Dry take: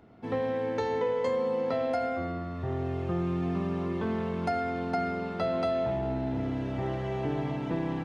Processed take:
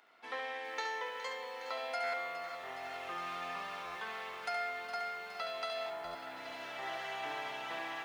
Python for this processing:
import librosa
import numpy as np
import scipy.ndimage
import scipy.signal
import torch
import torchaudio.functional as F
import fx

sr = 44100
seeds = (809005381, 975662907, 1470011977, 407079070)

y = scipy.signal.sosfilt(scipy.signal.butter(2, 1400.0, 'highpass', fs=sr, output='sos'), x)
y = y + 10.0 ** (-6.5 / 20.0) * np.pad(y, (int(70 * sr / 1000.0), 0))[:len(y)]
y = fx.rider(y, sr, range_db=10, speed_s=2.0)
y = fx.lowpass(y, sr, hz=fx.line((5.89, 1900.0), (6.35, 3100.0)), slope=12, at=(5.89, 6.35), fade=0.02)
y = fx.buffer_glitch(y, sr, at_s=(2.03, 3.85, 6.04), block=512, repeats=8)
y = fx.echo_crushed(y, sr, ms=414, feedback_pct=80, bits=10, wet_db=-11)
y = F.gain(torch.from_numpy(y), 1.0).numpy()